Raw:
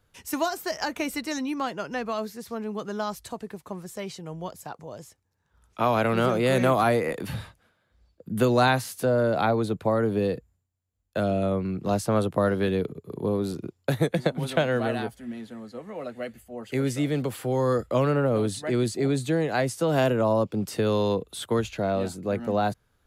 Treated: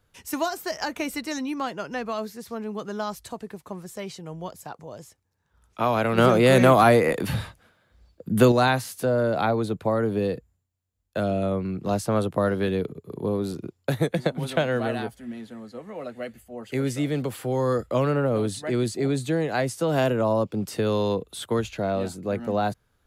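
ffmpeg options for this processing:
-filter_complex "[0:a]asettb=1/sr,asplit=3[s0][s1][s2];[s0]atrim=end=6.184[s3];[s1]atrim=start=6.18:end=8.52,asetpts=PTS-STARTPTS,afade=t=in:d=0.004:c=qsin,afade=t=out:st=2.336:d=0.004:c=qsin,acontrast=48[s4];[s2]atrim=start=8.516[s5];[s3][s4]acrossfade=d=0.004:c1=hsin:c2=qsin[s6];[s6][s5]acrossfade=d=0.004:c1=qsin:c2=hsin"

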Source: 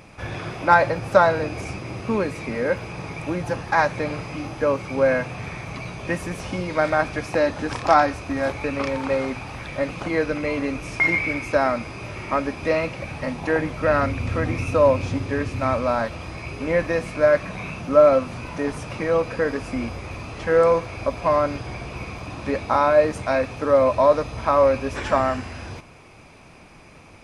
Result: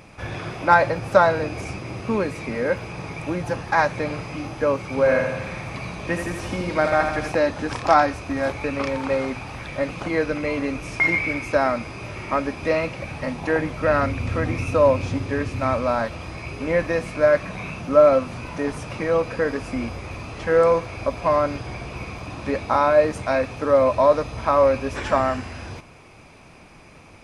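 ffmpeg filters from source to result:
-filter_complex "[0:a]asettb=1/sr,asplit=3[s0][s1][s2];[s0]atrim=end=4.844[s3];[s1]atrim=start=4.84:end=7.32,asetpts=PTS-STARTPTS,afade=t=in:d=0.004:c=qsin,afade=t=out:st=2.476:d=0.004:c=qsin,aecho=1:1:80|160|240|320|400|480|560|640:0.501|0.296|0.174|0.103|0.0607|0.0358|0.0211|0.0125,atrim=end_sample=109368[s4];[s2]atrim=start=7.316[s5];[s3][s4]acrossfade=d=0.004:c1=hsin:c2=qsin[s6];[s6][s5]acrossfade=d=0.004:c1=qsin:c2=hsin"

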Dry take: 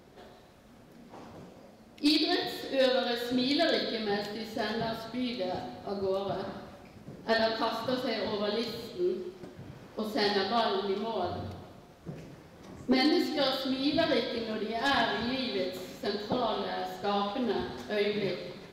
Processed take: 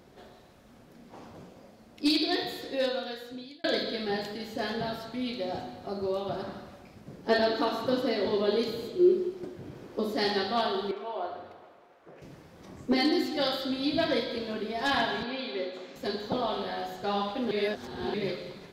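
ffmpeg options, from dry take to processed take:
-filter_complex "[0:a]asettb=1/sr,asplit=3[s0][s1][s2];[s0]atrim=end=7.274[s3];[s1]atrim=start=7.27:end=10.15,asetpts=PTS-STARTPTS,afade=t=in:d=0.004:c=qsin,afade=t=out:st=2.876:d=0.004:c=qsin,equalizer=f=360:t=o:w=0.87:g=9[s4];[s2]atrim=start=10.146[s5];[s3][s4]acrossfade=d=0.004:c1=hsin:c2=qsin[s6];[s6][s5]acrossfade=d=0.004:c1=qsin:c2=hsin,asettb=1/sr,asplit=3[s7][s8][s9];[s7]atrim=end=10.914[s10];[s8]atrim=start=10.91:end=12.22,asetpts=PTS-STARTPTS,afade=t=in:d=0.004:c=qsin,afade=t=out:st=1.306:d=0.004:c=qsin,acrossover=split=370 2700:gain=0.0794 1 0.2[s11][s12][s13];[s11][s12][s13]amix=inputs=3:normalize=0[s14];[s9]atrim=start=12.216[s15];[s10][s14]acrossfade=d=0.004:c1=hsin:c2=qsin[s16];[s16][s15]acrossfade=d=0.004:c1=qsin:c2=hsin,asettb=1/sr,asplit=3[s17][s18][s19];[s17]atrim=end=15.234[s20];[s18]atrim=start=15.23:end=15.96,asetpts=PTS-STARTPTS,afade=t=in:d=0.004:c=qsin,afade=t=out:st=0.726:d=0.004:c=qsin,highpass=300,lowpass=3700[s21];[s19]atrim=start=15.956[s22];[s20][s21]acrossfade=d=0.004:c1=hsin:c2=qsin[s23];[s23][s22]acrossfade=d=0.004:c1=qsin:c2=hsin,asplit=4[s24][s25][s26][s27];[s24]atrim=end=3.64,asetpts=PTS-STARTPTS,afade=t=out:st=2.5:d=1.14[s28];[s25]atrim=start=3.64:end=17.512,asetpts=PTS-STARTPTS,afade=t=in:d=0.004:c=hsin[s29];[s26]atrim=start=17.508:end=18.142,asetpts=PTS-STARTPTS,areverse[s30];[s27]atrim=start=18.138[s31];[s28][s29]concat=n=2:v=0:a=1[s32];[s32][s30]acrossfade=d=0.004:c1=hsin:c2=hsin[s33];[s33][s31]acrossfade=d=0.004:c1=hsin:c2=hsin"

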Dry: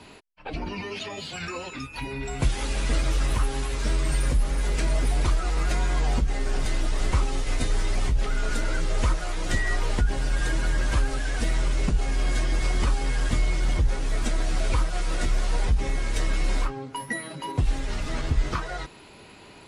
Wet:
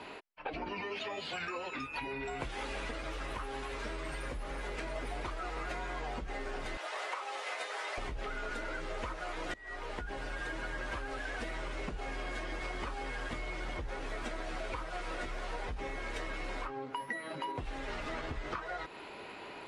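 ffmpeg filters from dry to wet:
-filter_complex "[0:a]asettb=1/sr,asplit=3[s0][s1][s2];[s0]atrim=end=6.774[s3];[s1]atrim=start=6.77:end=7.98,asetpts=PTS-STARTPTS,afade=t=in:d=0.004:c=qsin,afade=t=out:st=1.206:d=0.004:c=qsin,highpass=f=530:w=0.5412,highpass=f=530:w=1.3066[s4];[s2]atrim=start=7.976[s5];[s3][s4]acrossfade=d=0.004:c1=hsin:c2=qsin[s6];[s6][s5]acrossfade=d=0.004:c1=qsin:c2=hsin,asplit=4[s7][s8][s9][s10];[s7]atrim=end=2.912[s11];[s8]atrim=start=2.908:end=4.962,asetpts=PTS-STARTPTS,volume=0.668[s12];[s9]atrim=start=4.958:end=9.54,asetpts=PTS-STARTPTS,afade=t=out:st=4.578:d=0.004:c=hsin:silence=0.0749894[s13];[s10]atrim=start=9.54,asetpts=PTS-STARTPTS,afade=t=in:d=1.34:silence=0.0749894[s14];[s11][s12]acrossfade=d=0.004:c1=hsin:c2=hsin[s15];[s13][s14]concat=n=2:v=0:a=1[s16];[s15][s16]acrossfade=d=0.004:c1=hsin:c2=hsin,bass=f=250:g=-14,treble=f=4000:g=-14,acompressor=threshold=0.01:ratio=6,volume=1.58"

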